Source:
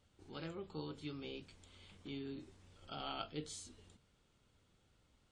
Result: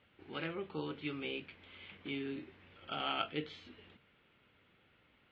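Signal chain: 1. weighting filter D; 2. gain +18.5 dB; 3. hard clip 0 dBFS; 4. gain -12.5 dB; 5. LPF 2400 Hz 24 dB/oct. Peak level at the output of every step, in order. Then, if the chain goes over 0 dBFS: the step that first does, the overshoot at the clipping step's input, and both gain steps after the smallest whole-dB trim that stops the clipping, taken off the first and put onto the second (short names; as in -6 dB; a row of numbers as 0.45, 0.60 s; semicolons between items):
-20.5, -2.0, -2.0, -14.5, -19.5 dBFS; no overload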